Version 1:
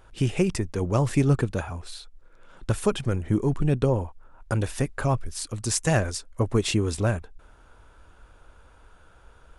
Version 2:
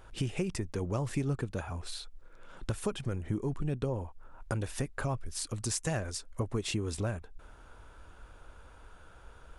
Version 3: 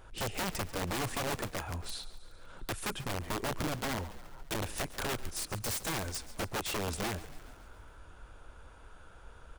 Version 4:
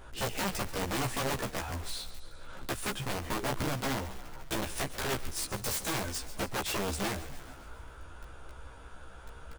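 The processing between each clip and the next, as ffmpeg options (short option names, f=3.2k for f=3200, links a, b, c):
-af "acompressor=threshold=-34dB:ratio=2.5"
-filter_complex "[0:a]aeval=exprs='(mod(26.6*val(0)+1,2)-1)/26.6':c=same,asplit=7[a][b][c][d][e][f][g];[b]adelay=139,afreqshift=-31,volume=-16dB[h];[c]adelay=278,afreqshift=-62,volume=-20.2dB[i];[d]adelay=417,afreqshift=-93,volume=-24.3dB[j];[e]adelay=556,afreqshift=-124,volume=-28.5dB[k];[f]adelay=695,afreqshift=-155,volume=-32.6dB[l];[g]adelay=834,afreqshift=-186,volume=-36.8dB[m];[a][h][i][j][k][l][m]amix=inputs=7:normalize=0"
-filter_complex "[0:a]asplit=2[a][b];[b]aeval=exprs='(mod(94.4*val(0)+1,2)-1)/94.4':c=same,volume=-7.5dB[c];[a][c]amix=inputs=2:normalize=0,asplit=2[d][e];[e]adelay=15,volume=-2.5dB[f];[d][f]amix=inputs=2:normalize=0"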